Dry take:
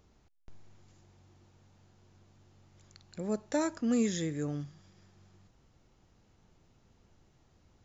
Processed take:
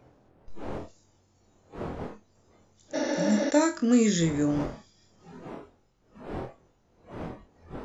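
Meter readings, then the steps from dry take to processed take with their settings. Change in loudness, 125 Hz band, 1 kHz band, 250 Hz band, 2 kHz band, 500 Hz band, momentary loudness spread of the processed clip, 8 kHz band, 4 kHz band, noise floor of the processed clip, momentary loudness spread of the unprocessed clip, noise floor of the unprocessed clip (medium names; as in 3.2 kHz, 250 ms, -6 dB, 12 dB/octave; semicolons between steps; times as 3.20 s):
+5.5 dB, +8.0 dB, +9.5 dB, +8.5 dB, +10.5 dB, +8.5 dB, 21 LU, no reading, +9.5 dB, -66 dBFS, 13 LU, -67 dBFS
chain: wind noise 530 Hz -50 dBFS; on a send: flutter echo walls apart 4.1 m, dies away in 0.22 s; on the sum: spectral replace 2.97–3.48 s, 250–6800 Hz after; spectral noise reduction 12 dB; trim +7 dB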